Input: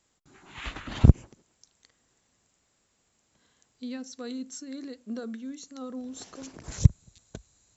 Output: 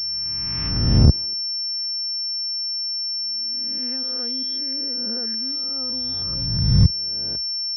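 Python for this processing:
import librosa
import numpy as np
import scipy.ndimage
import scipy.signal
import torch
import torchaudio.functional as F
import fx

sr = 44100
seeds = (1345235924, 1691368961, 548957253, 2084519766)

y = fx.spec_swells(x, sr, rise_s=1.34)
y = fx.pwm(y, sr, carrier_hz=5400.0)
y = y * 10.0 ** (-1.5 / 20.0)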